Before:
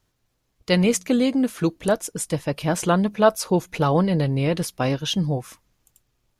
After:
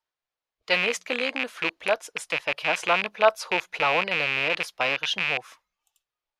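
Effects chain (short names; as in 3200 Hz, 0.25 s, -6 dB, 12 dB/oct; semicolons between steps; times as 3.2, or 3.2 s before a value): rattling part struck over -28 dBFS, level -12 dBFS; three-band isolator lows -23 dB, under 520 Hz, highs -14 dB, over 4900 Hz; spectral noise reduction 12 dB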